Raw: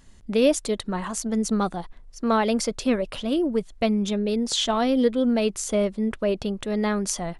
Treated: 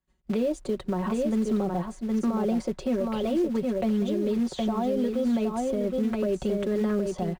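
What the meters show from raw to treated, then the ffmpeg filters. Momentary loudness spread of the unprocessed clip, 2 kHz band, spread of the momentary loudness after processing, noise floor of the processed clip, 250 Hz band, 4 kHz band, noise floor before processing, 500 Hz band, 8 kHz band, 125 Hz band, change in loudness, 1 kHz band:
7 LU, −9.5 dB, 3 LU, −49 dBFS, −1.5 dB, −13.5 dB, −49 dBFS, −3.0 dB, below −15 dB, 0.0 dB, −3.0 dB, −5.5 dB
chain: -filter_complex "[0:a]agate=range=-33dB:threshold=-35dB:ratio=3:detection=peak,acrossover=split=400|770[link_01][link_02][link_03];[link_03]acompressor=threshold=-42dB:ratio=6[link_04];[link_01][link_02][link_04]amix=inputs=3:normalize=0,highpass=42,equalizer=frequency=200:width=5.6:gain=-7,bandreject=frequency=5400:width=14,aecho=1:1:5.4:0.83,aresample=22050,aresample=44100,acrossover=split=290|3000[link_05][link_06][link_07];[link_06]acompressor=threshold=-25dB:ratio=10[link_08];[link_05][link_08][link_07]amix=inputs=3:normalize=0,acrusher=bits=5:mode=log:mix=0:aa=0.000001,highshelf=frequency=3900:gain=-11,aecho=1:1:766:0.531,alimiter=limit=-21.5dB:level=0:latency=1:release=112,volume=3dB"

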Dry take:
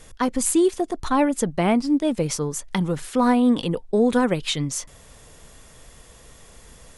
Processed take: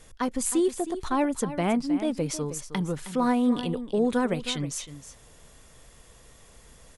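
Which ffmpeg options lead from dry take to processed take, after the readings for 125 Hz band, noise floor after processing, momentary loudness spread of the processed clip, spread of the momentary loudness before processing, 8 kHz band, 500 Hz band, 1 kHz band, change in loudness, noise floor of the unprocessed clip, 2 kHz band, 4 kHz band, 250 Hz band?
−5.5 dB, −54 dBFS, 8 LU, 7 LU, −5.5 dB, −5.5 dB, −5.5 dB, −5.0 dB, −49 dBFS, −5.5 dB, −5.5 dB, −5.0 dB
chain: -af "aecho=1:1:314:0.237,volume=-5.5dB"

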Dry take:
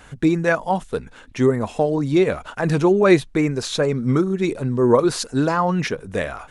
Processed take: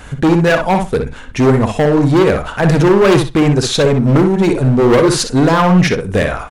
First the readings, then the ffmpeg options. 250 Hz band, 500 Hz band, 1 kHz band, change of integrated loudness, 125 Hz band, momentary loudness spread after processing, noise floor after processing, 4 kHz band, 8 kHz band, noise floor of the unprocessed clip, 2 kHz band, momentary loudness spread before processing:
+7.5 dB, +6.5 dB, +7.5 dB, +7.5 dB, +10.5 dB, 5 LU, −31 dBFS, +10.0 dB, +9.0 dB, −46 dBFS, +7.5 dB, 9 LU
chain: -filter_complex "[0:a]lowshelf=frequency=170:gain=6,volume=17dB,asoftclip=hard,volume=-17dB,asplit=2[link_01][link_02];[link_02]adelay=61,lowpass=frequency=3900:poles=1,volume=-6dB,asplit=2[link_03][link_04];[link_04]adelay=61,lowpass=frequency=3900:poles=1,volume=0.16,asplit=2[link_05][link_06];[link_06]adelay=61,lowpass=frequency=3900:poles=1,volume=0.16[link_07];[link_03][link_05][link_07]amix=inputs=3:normalize=0[link_08];[link_01][link_08]amix=inputs=2:normalize=0,volume=9dB"

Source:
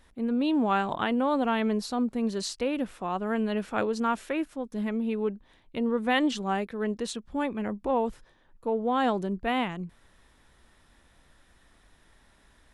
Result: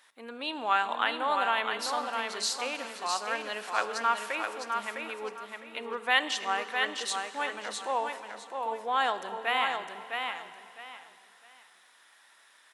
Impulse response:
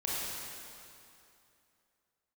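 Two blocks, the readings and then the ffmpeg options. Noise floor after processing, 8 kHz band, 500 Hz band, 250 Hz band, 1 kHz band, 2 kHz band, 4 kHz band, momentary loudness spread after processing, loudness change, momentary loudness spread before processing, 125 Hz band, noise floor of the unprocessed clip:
−60 dBFS, +5.5 dB, −6.5 dB, −18.0 dB, +1.5 dB, +5.0 dB, +5.5 dB, 13 LU, −2.0 dB, 8 LU, below −20 dB, −62 dBFS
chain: -filter_complex "[0:a]highpass=1000,aecho=1:1:657|1314|1971:0.562|0.141|0.0351,asplit=2[link_01][link_02];[1:a]atrim=start_sample=2205[link_03];[link_02][link_03]afir=irnorm=-1:irlink=0,volume=-16dB[link_04];[link_01][link_04]amix=inputs=2:normalize=0,volume=3dB"

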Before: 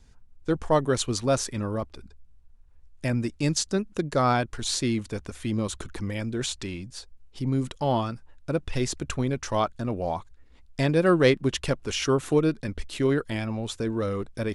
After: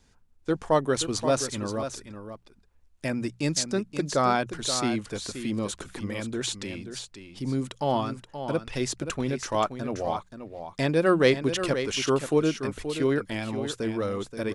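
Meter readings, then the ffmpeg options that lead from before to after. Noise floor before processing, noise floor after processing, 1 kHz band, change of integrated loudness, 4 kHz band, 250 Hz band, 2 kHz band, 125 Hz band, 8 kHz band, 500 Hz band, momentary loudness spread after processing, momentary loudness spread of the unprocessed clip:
−55 dBFS, −60 dBFS, +0.5 dB, −0.5 dB, +0.5 dB, −1.0 dB, +0.5 dB, −4.5 dB, +0.5 dB, 0.0 dB, 12 LU, 12 LU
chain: -filter_complex "[0:a]lowshelf=frequency=99:gain=-11.5,bandreject=frequency=60:width_type=h:width=6,bandreject=frequency=120:width_type=h:width=6,bandreject=frequency=180:width_type=h:width=6,asplit=2[link_01][link_02];[link_02]aecho=0:1:527:0.335[link_03];[link_01][link_03]amix=inputs=2:normalize=0"

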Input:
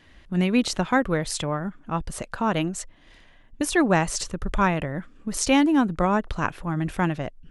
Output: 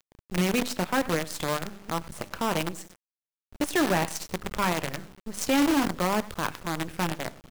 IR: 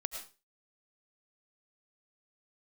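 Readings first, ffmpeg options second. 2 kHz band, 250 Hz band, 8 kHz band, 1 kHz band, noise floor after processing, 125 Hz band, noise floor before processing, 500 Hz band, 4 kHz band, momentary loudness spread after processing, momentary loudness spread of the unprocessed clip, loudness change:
−3.0 dB, −5.0 dB, −3.5 dB, −3.5 dB, below −85 dBFS, −6.0 dB, −53 dBFS, −3.0 dB, −0.5 dB, 10 LU, 11 LU, −3.5 dB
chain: -filter_complex "[0:a]agate=range=-24dB:threshold=-45dB:ratio=16:detection=peak,highpass=47,equalizer=frequency=900:width=0.46:gain=2.5,bandreject=frequency=50:width_type=h:width=6,bandreject=frequency=100:width_type=h:width=6,bandreject=frequency=150:width_type=h:width=6,bandreject=frequency=200:width_type=h:width=6,bandreject=frequency=250:width_type=h:width=6,asplit=2[link_01][link_02];[link_02]adelay=96,lowpass=frequency=4000:poles=1,volume=-14.5dB,asplit=2[link_03][link_04];[link_04]adelay=96,lowpass=frequency=4000:poles=1,volume=0.3,asplit=2[link_05][link_06];[link_06]adelay=96,lowpass=frequency=4000:poles=1,volume=0.3[link_07];[link_03][link_05][link_07]amix=inputs=3:normalize=0[link_08];[link_01][link_08]amix=inputs=2:normalize=0,flanger=delay=8.2:depth=3.5:regen=-62:speed=0.61:shape=triangular,acrossover=split=370|2900[link_09][link_10][link_11];[link_09]acompressor=mode=upward:threshold=-30dB:ratio=2.5[link_12];[link_12][link_10][link_11]amix=inputs=3:normalize=0,asoftclip=type=tanh:threshold=-15.5dB,acrusher=bits=5:dc=4:mix=0:aa=0.000001"

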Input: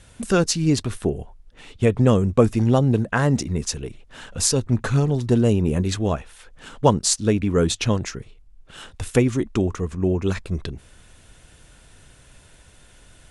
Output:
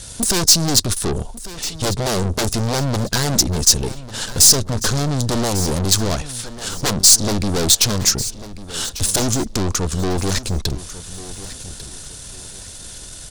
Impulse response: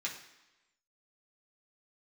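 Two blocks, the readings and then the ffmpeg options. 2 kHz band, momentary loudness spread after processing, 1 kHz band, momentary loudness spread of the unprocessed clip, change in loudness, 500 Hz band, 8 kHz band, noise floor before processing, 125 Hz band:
+3.0 dB, 21 LU, +2.0 dB, 12 LU, +4.5 dB, −2.5 dB, +13.0 dB, −51 dBFS, −0.5 dB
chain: -filter_complex "[0:a]aeval=exprs='0.891*sin(PI/2*5.01*val(0)/0.891)':channel_layout=same,aeval=exprs='(tanh(5.01*val(0)+0.65)-tanh(0.65))/5.01':channel_layout=same,highshelf=frequency=3400:width_type=q:width=1.5:gain=10,asplit=2[link_01][link_02];[link_02]aecho=0:1:1146|2292|3438:0.168|0.0504|0.0151[link_03];[link_01][link_03]amix=inputs=2:normalize=0,volume=-4.5dB"

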